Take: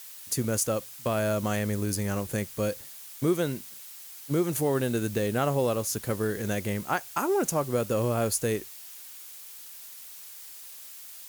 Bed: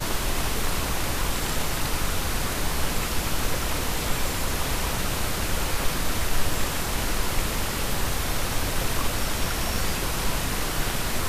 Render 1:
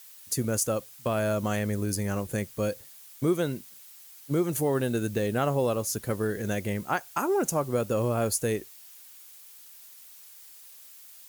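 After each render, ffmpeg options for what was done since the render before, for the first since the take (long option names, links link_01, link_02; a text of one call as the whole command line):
ffmpeg -i in.wav -af "afftdn=noise_reduction=6:noise_floor=-45" out.wav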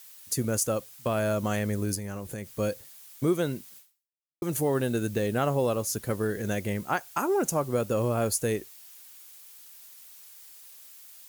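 ffmpeg -i in.wav -filter_complex "[0:a]asettb=1/sr,asplit=3[link_01][link_02][link_03];[link_01]atrim=end=1.954[link_04];[link_02]atrim=start=1.95:end=2.52,asetpts=PTS-STARTPTS,afade=type=in:duration=0.004:curve=qsin,afade=type=out:start_time=0.566:duration=0.004:curve=qsin,acompressor=threshold=-32dB:ratio=6:attack=3.2:release=140:knee=1:detection=peak[link_05];[link_03]atrim=start=2.516[link_06];[link_04][link_05]acrossfade=duration=0.004:curve1=hsin:curve2=qsin[link_07];[link_07][link_06]acrossfade=duration=0.004:curve1=qsin:curve2=hsin,asplit=2[link_08][link_09];[link_08]atrim=end=4.42,asetpts=PTS-STARTPTS,afade=type=out:start_time=3.78:duration=0.64:curve=exp[link_10];[link_09]atrim=start=4.42,asetpts=PTS-STARTPTS,afade=type=in:duration=0.004:curve=hsin[link_11];[link_10][link_11]concat=n=2:v=0:a=1" out.wav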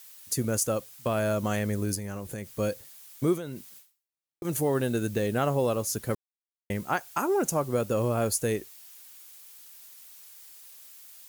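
ffmpeg -i in.wav -filter_complex "[0:a]asettb=1/sr,asplit=3[link_01][link_02][link_03];[link_01]atrim=end=3.374[link_04];[link_02]atrim=start=3.37:end=4.45,asetpts=PTS-STARTPTS,afade=type=in:duration=0.004:curve=qsin,afade=type=out:start_time=1.076:duration=0.004:curve=qsin,acompressor=threshold=-32dB:ratio=6:attack=3.2:release=140:knee=1:detection=peak[link_05];[link_03]atrim=start=4.446[link_06];[link_04][link_05]acrossfade=duration=0.004:curve1=hsin:curve2=qsin[link_07];[link_07][link_06]acrossfade=duration=0.004:curve1=qsin:curve2=hsin,asplit=3[link_08][link_09][link_10];[link_08]atrim=end=6.15,asetpts=PTS-STARTPTS,afade=type=out:start_time=6.146:duration=0.004:curve=hsin[link_11];[link_09]atrim=start=6.15:end=6.7,asetpts=PTS-STARTPTS,volume=0[link_12];[link_10]atrim=start=6.7,asetpts=PTS-STARTPTS,afade=type=in:duration=0.004:curve=hsin[link_13];[link_11][link_12][link_13]concat=n=3:v=0:a=1" out.wav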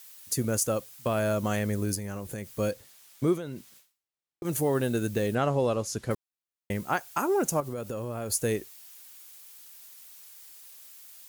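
ffmpeg -i in.wav -filter_complex "[0:a]asettb=1/sr,asplit=3[link_01][link_02][link_03];[link_01]atrim=end=2.714[link_04];[link_02]atrim=start=2.71:end=4.46,asetpts=PTS-STARTPTS,afade=type=in:duration=0.004:curve=qsin,afade=type=out:start_time=1.746:duration=0.004:curve=qsin,highshelf=frequency=8400:gain=-8[link_05];[link_03]atrim=start=4.456[link_06];[link_04][link_05]acrossfade=duration=0.004:curve1=hsin:curve2=qsin[link_07];[link_07][link_06]acrossfade=duration=0.004:curve1=qsin:curve2=hsin,asettb=1/sr,asplit=3[link_08][link_09][link_10];[link_08]atrim=end=5.354[link_11];[link_09]atrim=start=5.35:end=6.11,asetpts=PTS-STARTPTS,afade=type=in:duration=0.004:curve=qsin,afade=type=out:start_time=0.756:duration=0.004:curve=qsin,lowpass=6900[link_12];[link_10]atrim=start=6.106[link_13];[link_11][link_12]acrossfade=duration=0.004:curve1=hsin:curve2=qsin[link_14];[link_14][link_13]acrossfade=duration=0.004:curve1=qsin:curve2=hsin,asettb=1/sr,asplit=3[link_15][link_16][link_17];[link_15]atrim=end=7.604[link_18];[link_16]atrim=start=7.6:end=8.3,asetpts=PTS-STARTPTS,afade=type=in:duration=0.004:curve=qsin,afade=type=out:start_time=0.696:duration=0.004:curve=qsin,acompressor=threshold=-31dB:ratio=6:attack=3.2:release=140:knee=1:detection=peak[link_19];[link_17]atrim=start=8.296[link_20];[link_18][link_19]acrossfade=duration=0.004:curve1=hsin:curve2=qsin[link_21];[link_21][link_20]acrossfade=duration=0.004:curve1=qsin:curve2=hsin" out.wav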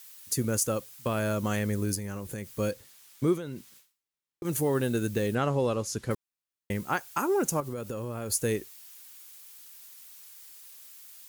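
ffmpeg -i in.wav -af "equalizer=frequency=670:width_type=o:width=0.42:gain=-5.5" out.wav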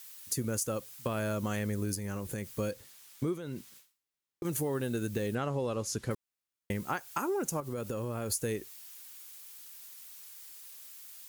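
ffmpeg -i in.wav -af "acompressor=threshold=-30dB:ratio=4" out.wav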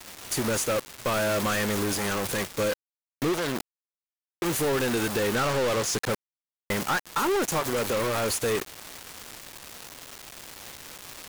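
ffmpeg -i in.wav -filter_complex "[0:a]acrusher=bits=6:mix=0:aa=0.000001,asplit=2[link_01][link_02];[link_02]highpass=frequency=720:poles=1,volume=28dB,asoftclip=type=tanh:threshold=-17.5dB[link_03];[link_01][link_03]amix=inputs=2:normalize=0,lowpass=frequency=5700:poles=1,volume=-6dB" out.wav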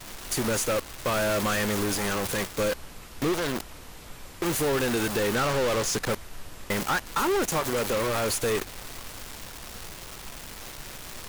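ffmpeg -i in.wav -i bed.wav -filter_complex "[1:a]volume=-18dB[link_01];[0:a][link_01]amix=inputs=2:normalize=0" out.wav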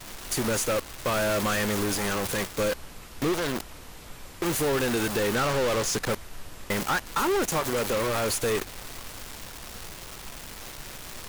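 ffmpeg -i in.wav -af anull out.wav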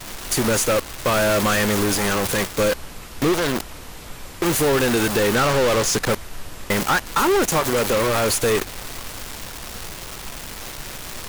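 ffmpeg -i in.wav -af "volume=7dB" out.wav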